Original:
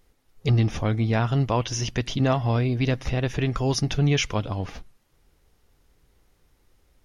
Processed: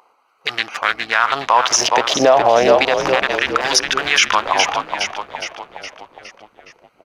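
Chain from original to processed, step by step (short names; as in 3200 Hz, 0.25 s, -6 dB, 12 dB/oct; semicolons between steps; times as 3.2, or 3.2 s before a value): Wiener smoothing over 25 samples; low shelf 260 Hz -4.5 dB; in parallel at 0 dB: compressor, threshold -29 dBFS, peak gain reduction 10 dB; on the sum: LFO high-pass sine 0.33 Hz 580–1600 Hz; on a send: frequency-shifting echo 0.414 s, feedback 53%, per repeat -64 Hz, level -11 dB; on the sum: maximiser +17.5 dB; gain -1 dB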